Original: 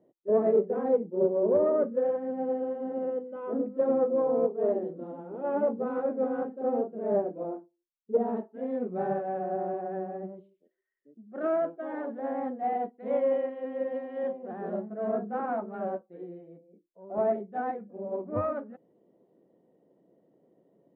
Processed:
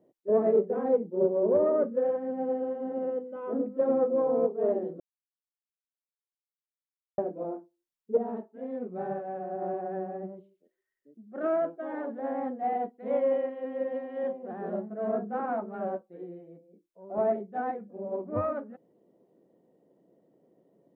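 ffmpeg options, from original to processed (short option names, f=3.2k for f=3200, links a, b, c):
-filter_complex "[0:a]asplit=5[a][b][c][d][e];[a]atrim=end=5,asetpts=PTS-STARTPTS,afade=t=out:st=4.996:d=0.004:c=hsin[f];[b]atrim=start=5:end=7.18,asetpts=PTS-STARTPTS,volume=0[g];[c]atrim=start=7.18:end=8.182,asetpts=PTS-STARTPTS,afade=t=in:d=0.004:c=hsin[h];[d]atrim=start=8.178:end=9.622,asetpts=PTS-STARTPTS,volume=-4dB[i];[e]atrim=start=9.618[j];[f][g][h]concat=n=3:v=0:a=1[k];[k][i]acrossfade=d=0.004:c1=hsin:c2=hsin[l];[l][j]acrossfade=d=0.004:c1=hsin:c2=hsin"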